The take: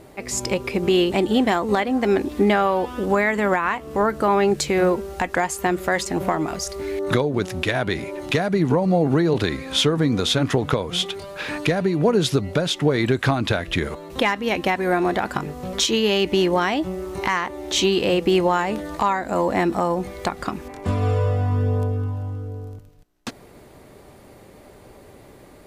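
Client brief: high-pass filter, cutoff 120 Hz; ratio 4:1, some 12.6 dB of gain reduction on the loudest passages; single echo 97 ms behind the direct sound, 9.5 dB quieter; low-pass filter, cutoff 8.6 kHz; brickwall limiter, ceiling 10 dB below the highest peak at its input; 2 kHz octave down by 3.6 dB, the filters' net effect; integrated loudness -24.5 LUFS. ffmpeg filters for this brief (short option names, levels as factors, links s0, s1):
-af "highpass=120,lowpass=8600,equalizer=f=2000:t=o:g=-4.5,acompressor=threshold=0.0316:ratio=4,alimiter=limit=0.0708:level=0:latency=1,aecho=1:1:97:0.335,volume=2.82"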